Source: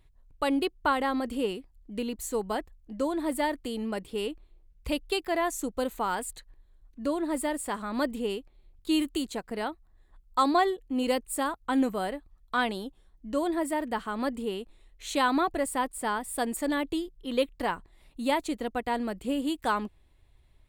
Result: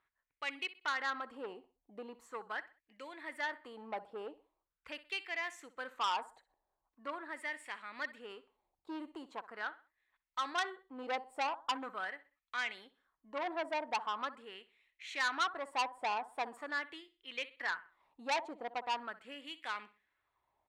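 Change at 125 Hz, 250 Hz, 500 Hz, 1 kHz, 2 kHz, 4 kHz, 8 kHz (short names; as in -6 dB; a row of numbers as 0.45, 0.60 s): n/a, -21.5 dB, -14.5 dB, -8.0 dB, -3.0 dB, -6.0 dB, -15.5 dB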